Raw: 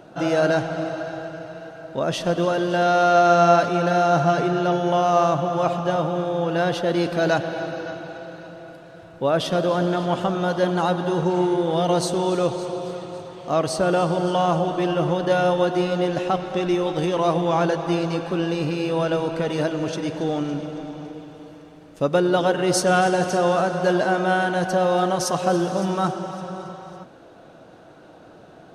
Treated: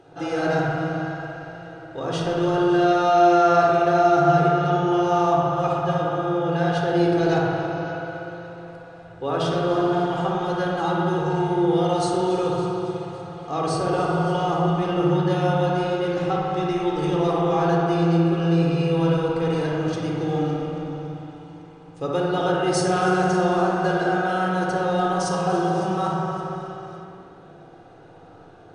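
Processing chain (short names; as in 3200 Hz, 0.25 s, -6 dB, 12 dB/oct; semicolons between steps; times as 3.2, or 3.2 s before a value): brick-wall FIR low-pass 10000 Hz; dark delay 60 ms, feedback 83%, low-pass 2200 Hz, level -3.5 dB; shoebox room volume 3800 m³, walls furnished, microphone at 3.9 m; gain -7 dB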